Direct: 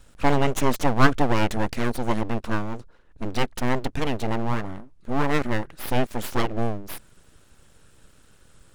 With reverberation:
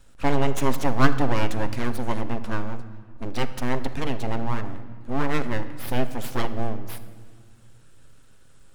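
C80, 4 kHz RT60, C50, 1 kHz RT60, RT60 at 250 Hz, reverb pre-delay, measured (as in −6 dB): 14.0 dB, 1.3 s, 12.5 dB, 1.7 s, 2.5 s, 7 ms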